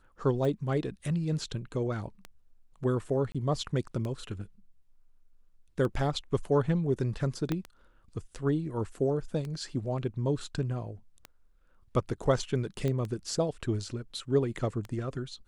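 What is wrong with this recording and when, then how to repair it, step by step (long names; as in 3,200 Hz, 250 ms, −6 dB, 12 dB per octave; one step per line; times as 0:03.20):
scratch tick 33 1/3 rpm
0:03.32–0:03.35: drop-out 26 ms
0:07.52: click −17 dBFS
0:12.88: click −20 dBFS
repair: click removal
repair the gap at 0:03.32, 26 ms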